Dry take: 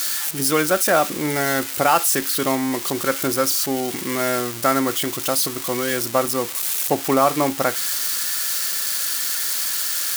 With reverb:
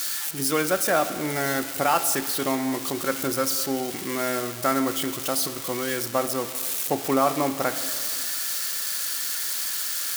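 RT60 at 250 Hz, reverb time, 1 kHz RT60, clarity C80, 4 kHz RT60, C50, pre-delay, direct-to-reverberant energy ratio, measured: 2.2 s, 2.2 s, 2.2 s, 13.0 dB, 2.0 s, 12.0 dB, 6 ms, 10.5 dB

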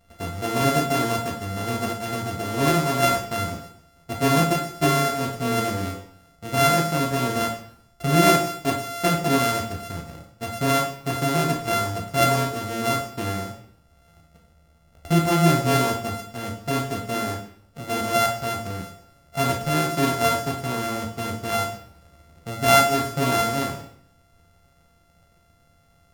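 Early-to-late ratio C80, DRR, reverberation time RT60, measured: 10.5 dB, 0.5 dB, 0.65 s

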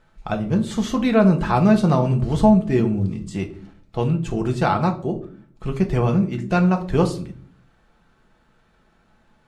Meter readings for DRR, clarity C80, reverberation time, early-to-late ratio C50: 3.0 dB, 18.0 dB, 0.50 s, 13.0 dB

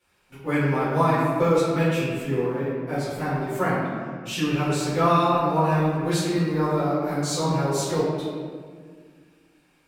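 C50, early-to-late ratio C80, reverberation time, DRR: -1.0 dB, 1.0 dB, 1.9 s, -15.5 dB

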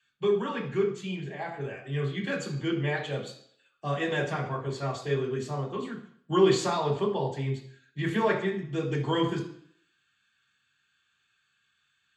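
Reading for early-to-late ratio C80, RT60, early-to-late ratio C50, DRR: 12.0 dB, 0.60 s, 8.5 dB, -3.5 dB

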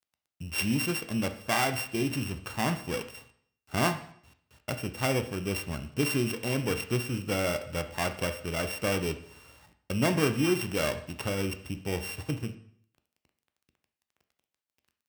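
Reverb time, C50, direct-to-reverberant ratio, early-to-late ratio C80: 0.60 s, 12.0 dB, 8.0 dB, 15.5 dB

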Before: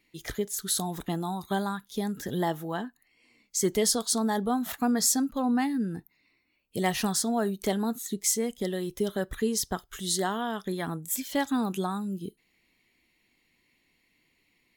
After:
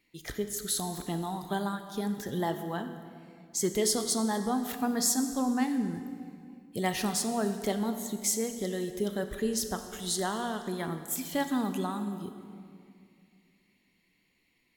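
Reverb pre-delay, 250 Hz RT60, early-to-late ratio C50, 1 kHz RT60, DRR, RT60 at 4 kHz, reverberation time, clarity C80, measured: 19 ms, 2.8 s, 9.0 dB, 2.2 s, 8.0 dB, 1.8 s, 2.4 s, 10.0 dB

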